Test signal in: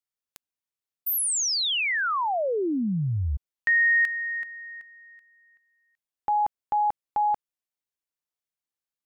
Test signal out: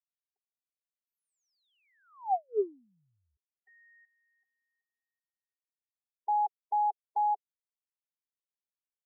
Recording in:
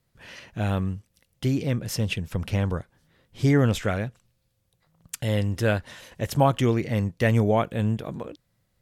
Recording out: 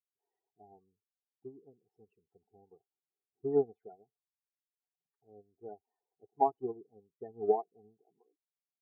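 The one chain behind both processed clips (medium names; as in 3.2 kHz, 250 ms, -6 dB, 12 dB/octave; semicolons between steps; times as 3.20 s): two resonant band-passes 560 Hz, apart 0.86 oct; loudest bins only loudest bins 16; upward expansion 2.5:1, over -44 dBFS; trim +2.5 dB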